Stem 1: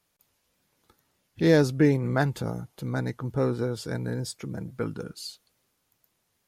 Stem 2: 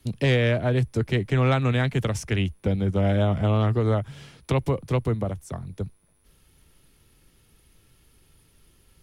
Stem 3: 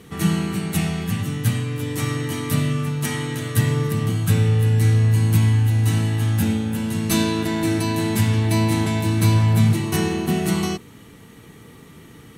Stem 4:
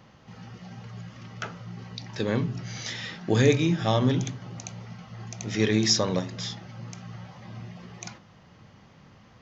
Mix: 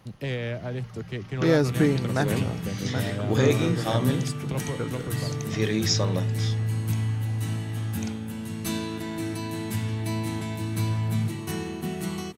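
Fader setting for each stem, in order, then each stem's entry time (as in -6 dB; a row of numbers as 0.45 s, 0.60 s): -1.5 dB, -9.5 dB, -10.0 dB, -2.5 dB; 0.00 s, 0.00 s, 1.55 s, 0.00 s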